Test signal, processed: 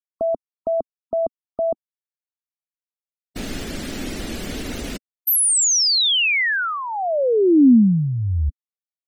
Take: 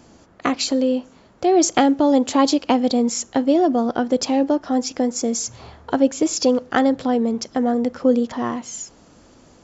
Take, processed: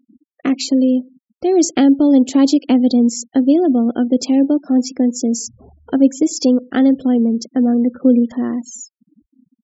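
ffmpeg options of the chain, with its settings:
-af "afftfilt=real='re*gte(hypot(re,im),0.0251)':imag='im*gte(hypot(re,im),0.0251)':win_size=1024:overlap=0.75,equalizer=f=125:t=o:w=1:g=-7,equalizer=f=250:t=o:w=1:g=9,equalizer=f=1000:t=o:w=1:g=-11"

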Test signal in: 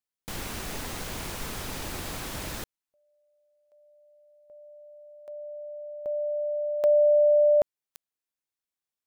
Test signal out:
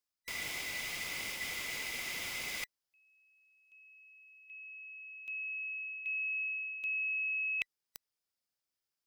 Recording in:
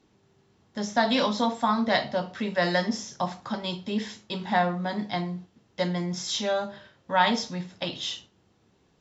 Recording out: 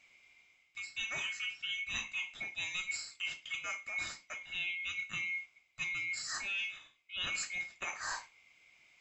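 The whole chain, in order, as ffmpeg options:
-af "afftfilt=real='real(if(lt(b,920),b+92*(1-2*mod(floor(b/92),2)),b),0)':imag='imag(if(lt(b,920),b+92*(1-2*mod(floor(b/92),2)),b),0)':win_size=2048:overlap=0.75,areverse,acompressor=threshold=0.02:ratio=10:attack=7.2:release=853:knee=6:detection=peak,areverse,equalizer=f=5000:w=5.4:g=8"

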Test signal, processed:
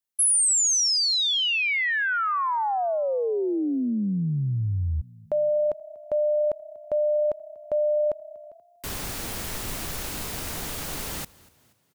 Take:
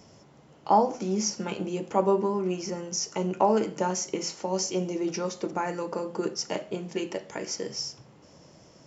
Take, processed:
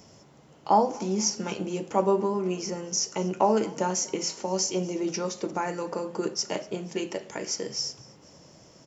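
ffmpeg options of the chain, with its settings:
-filter_complex "[0:a]highshelf=f=6300:g=6.5,asplit=4[s0][s1][s2][s3];[s1]adelay=240,afreqshift=32,volume=0.0708[s4];[s2]adelay=480,afreqshift=64,volume=0.032[s5];[s3]adelay=720,afreqshift=96,volume=0.0143[s6];[s0][s4][s5][s6]amix=inputs=4:normalize=0"

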